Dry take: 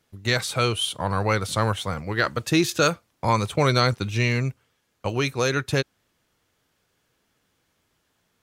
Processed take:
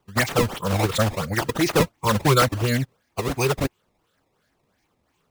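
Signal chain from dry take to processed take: drifting ripple filter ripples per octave 0.7, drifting +2.2 Hz, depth 16 dB; decimation with a swept rate 17×, swing 160% 1.8 Hz; time stretch by phase-locked vocoder 0.63×

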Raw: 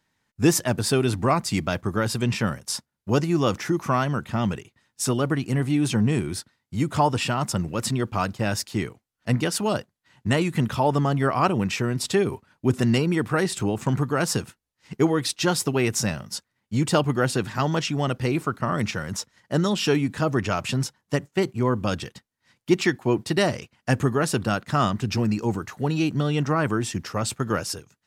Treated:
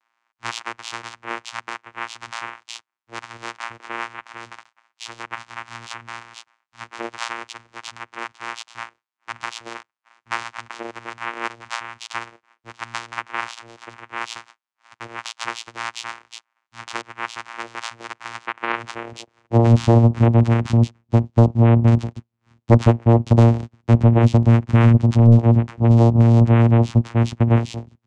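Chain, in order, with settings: high-pass sweep 1.8 kHz -> 180 Hz, 18.42–19.90 s; vocoder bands 4, saw 116 Hz; sine folder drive 9 dB, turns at 0 dBFS; trim -5 dB

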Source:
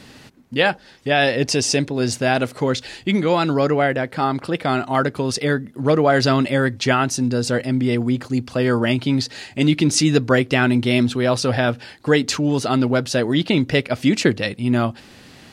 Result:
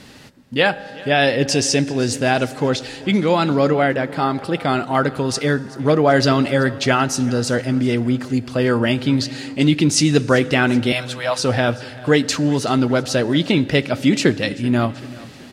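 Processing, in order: 10.92–11.39 s: steep high-pass 590 Hz 36 dB/octave; feedback delay 383 ms, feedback 53%, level -20.5 dB; on a send at -16.5 dB: reverberation RT60 2.3 s, pre-delay 3 ms; on the sum: trim +1 dB; Vorbis 64 kbps 44.1 kHz

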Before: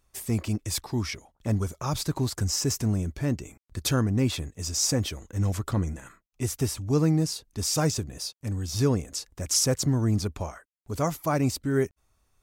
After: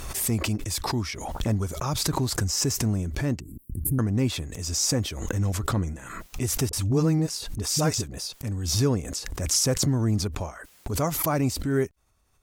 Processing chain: 3.40–3.99 s: inverse Chebyshev band-stop 590–6300 Hz, stop band 40 dB; 6.69–8.17 s: phase dispersion highs, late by 41 ms, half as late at 440 Hz; Chebyshev shaper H 8 -44 dB, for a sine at -11 dBFS; swell ahead of each attack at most 44 dB/s

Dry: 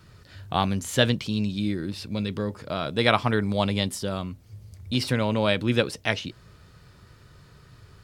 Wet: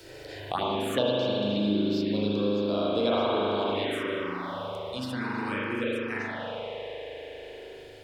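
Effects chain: Doppler pass-by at 1.90 s, 5 m/s, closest 4.7 m; resonant low shelf 220 Hz -11 dB, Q 1.5; reverberation RT60 2.8 s, pre-delay 39 ms, DRR -7.5 dB; touch-sensitive phaser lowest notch 200 Hz, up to 1.9 kHz, full sweep at -20 dBFS; three bands compressed up and down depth 70%; trim -2.5 dB

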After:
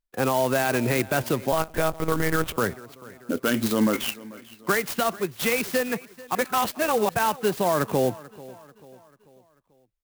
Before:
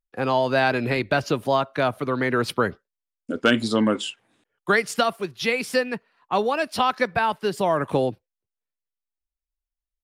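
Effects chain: 6.35–7.09 s: reverse; peak limiter -14.5 dBFS, peak gain reduction 8 dB; 3.93–4.72 s: resonant low-pass 2.2 kHz, resonance Q 7; feedback delay 440 ms, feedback 47%, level -20 dB; 1.52–2.57 s: monotone LPC vocoder at 8 kHz 160 Hz; sampling jitter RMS 0.045 ms; trim +1.5 dB

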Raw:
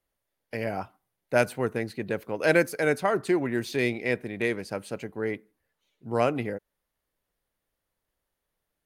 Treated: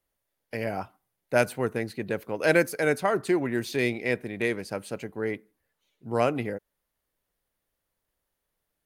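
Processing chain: treble shelf 8.4 kHz +3.5 dB

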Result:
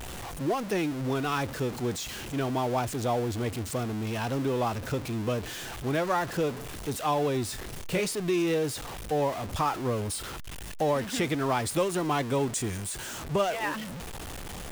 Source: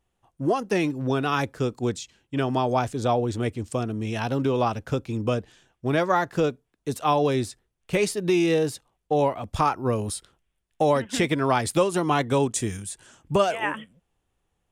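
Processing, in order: jump at every zero crossing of -25.5 dBFS; 7.46–8.06 s: doubling 28 ms -7 dB; trim -7 dB

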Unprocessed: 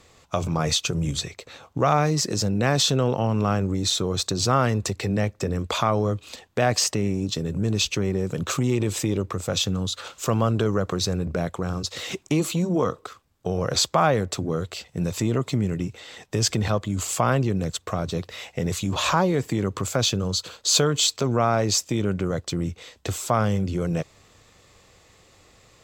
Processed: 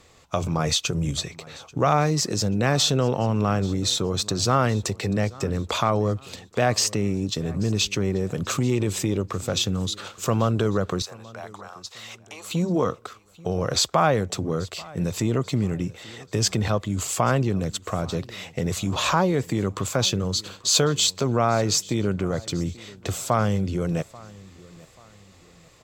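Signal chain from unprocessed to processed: 11.02–12.51 s: ladder high-pass 650 Hz, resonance 35%; on a send: feedback delay 836 ms, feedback 39%, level -22 dB

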